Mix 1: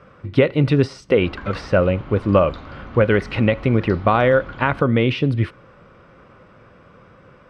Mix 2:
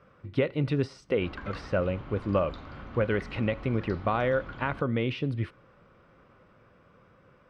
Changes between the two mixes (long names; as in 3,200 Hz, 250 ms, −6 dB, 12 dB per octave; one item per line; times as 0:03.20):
speech −11.0 dB
background −6.5 dB